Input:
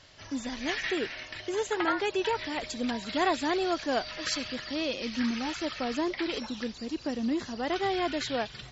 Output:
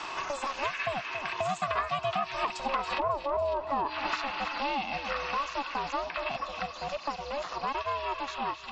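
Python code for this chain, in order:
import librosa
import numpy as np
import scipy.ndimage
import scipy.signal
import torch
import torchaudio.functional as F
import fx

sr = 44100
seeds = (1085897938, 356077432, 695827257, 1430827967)

p1 = fx.doppler_pass(x, sr, speed_mps=18, closest_m=2.5, pass_at_s=3.25)
p2 = fx.highpass(p1, sr, hz=280.0, slope=6)
p3 = fx.env_lowpass_down(p2, sr, base_hz=360.0, full_db=-35.0)
p4 = fx.peak_eq(p3, sr, hz=600.0, db=8.5, octaves=0.68)
p5 = p4 * np.sin(2.0 * np.pi * 280.0 * np.arange(len(p4)) / sr)
p6 = fx.over_compress(p5, sr, threshold_db=-45.0, ratio=-1.0)
p7 = p5 + (p6 * 10.0 ** (1.5 / 20.0))
p8 = fx.low_shelf_res(p7, sr, hz=790.0, db=-6.5, q=1.5)
p9 = fx.small_body(p8, sr, hz=(660.0, 1100.0, 2600.0), ring_ms=25, db=13)
p10 = p9 + fx.echo_feedback(p9, sr, ms=276, feedback_pct=33, wet_db=-15.0, dry=0)
p11 = fx.band_squash(p10, sr, depth_pct=100)
y = p11 * 10.0 ** (8.5 / 20.0)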